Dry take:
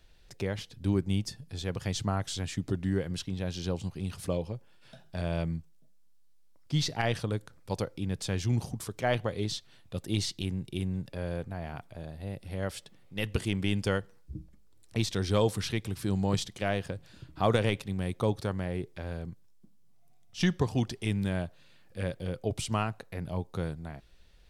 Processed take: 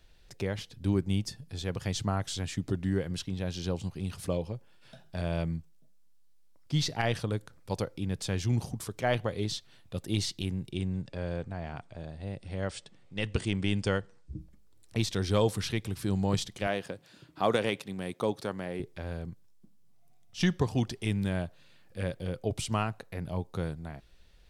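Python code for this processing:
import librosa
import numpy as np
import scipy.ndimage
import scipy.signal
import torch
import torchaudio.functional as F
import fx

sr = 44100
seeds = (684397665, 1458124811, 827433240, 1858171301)

y = fx.brickwall_lowpass(x, sr, high_hz=9400.0, at=(10.71, 14.38), fade=0.02)
y = fx.highpass(y, sr, hz=200.0, slope=12, at=(16.67, 18.8))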